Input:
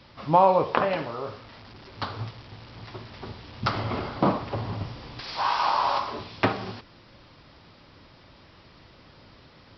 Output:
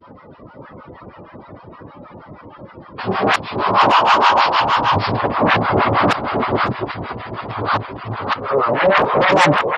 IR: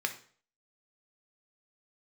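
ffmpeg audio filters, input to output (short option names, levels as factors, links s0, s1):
-filter_complex "[0:a]areverse,atempo=1,asplit=2[s0][s1];[s1]aeval=exprs='0.531*sin(PI/2*8.91*val(0)/0.531)':c=same,volume=0.562[s2];[s0][s2]amix=inputs=2:normalize=0,bass=f=250:g=5,treble=f=4000:g=-6,asplit=2[s3][s4];[s4]aecho=0:1:562:0.668[s5];[s3][s5]amix=inputs=2:normalize=0,afftdn=nr=22:nf=-32,highpass=f=190:p=1,equalizer=f=960:w=0.34:g=10.5,acrossover=split=790[s6][s7];[s6]aeval=exprs='val(0)*(1-1/2+1/2*cos(2*PI*6.4*n/s))':c=same[s8];[s7]aeval=exprs='val(0)*(1-1/2-1/2*cos(2*PI*6.4*n/s))':c=same[s9];[s8][s9]amix=inputs=2:normalize=0,volume=0.596"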